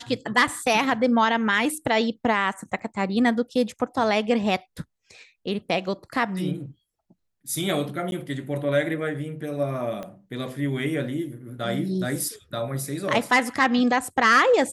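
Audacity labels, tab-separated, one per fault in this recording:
2.790000	2.790000	dropout 4.6 ms
8.110000	8.120000	dropout 11 ms
10.030000	10.030000	pop -21 dBFS

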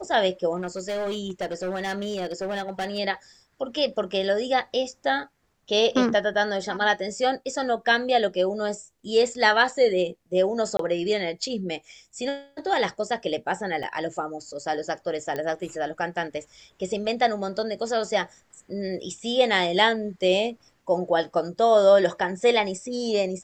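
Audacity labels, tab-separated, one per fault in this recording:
0.560000	2.990000	clipped -25 dBFS
10.770000	10.790000	dropout 23 ms
13.830000	13.830000	dropout 4.1 ms
15.360000	15.360000	pop -17 dBFS

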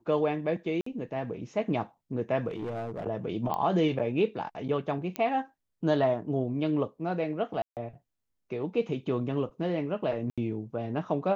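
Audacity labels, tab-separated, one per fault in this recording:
0.810000	0.860000	dropout 54 ms
2.480000	3.040000	clipped -30.5 dBFS
3.540000	3.540000	pop -19 dBFS
5.160000	5.160000	pop -17 dBFS
7.620000	7.770000	dropout 148 ms
10.300000	10.380000	dropout 76 ms

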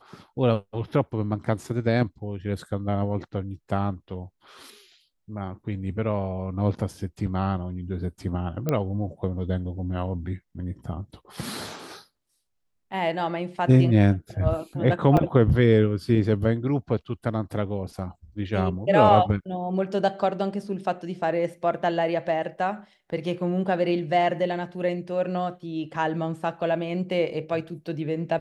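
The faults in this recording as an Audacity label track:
8.690000	8.690000	pop -12 dBFS
15.170000	15.170000	dropout 4.3 ms

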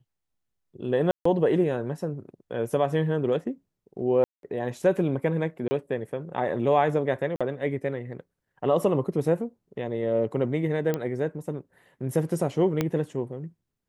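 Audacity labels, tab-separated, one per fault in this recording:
1.110000	1.250000	dropout 144 ms
4.240000	4.430000	dropout 192 ms
5.680000	5.710000	dropout 30 ms
7.360000	7.410000	dropout 46 ms
10.940000	10.940000	pop -14 dBFS
12.810000	12.810000	pop -11 dBFS

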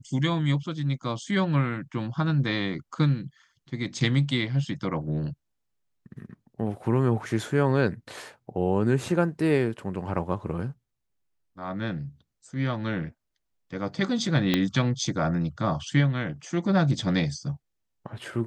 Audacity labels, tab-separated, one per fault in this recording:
14.540000	14.540000	pop -9 dBFS

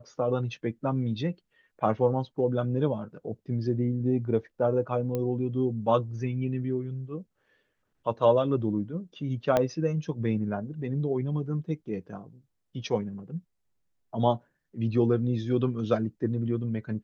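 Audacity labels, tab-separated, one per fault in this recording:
5.150000	5.150000	pop -18 dBFS
9.570000	9.570000	pop -11 dBFS

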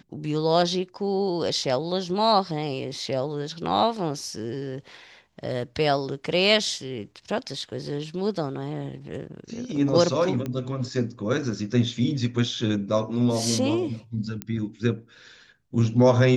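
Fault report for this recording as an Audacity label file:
10.460000	10.460000	pop -18 dBFS
14.420000	14.420000	pop -13 dBFS

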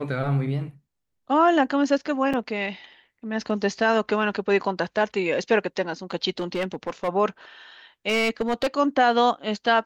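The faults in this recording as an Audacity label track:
2.330000	2.340000	dropout 5.6 ms
6.390000	7.090000	clipped -21 dBFS
8.080000	8.670000	clipped -18 dBFS

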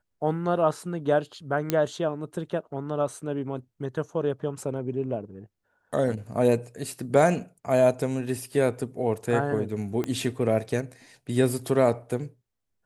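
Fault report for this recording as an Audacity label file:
1.700000	1.700000	pop -9 dBFS
10.040000	10.040000	pop -16 dBFS

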